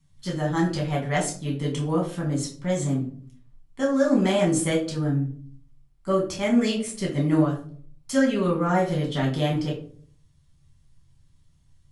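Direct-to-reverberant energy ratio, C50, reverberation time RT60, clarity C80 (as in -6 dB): -3.0 dB, 8.0 dB, 0.50 s, 13.0 dB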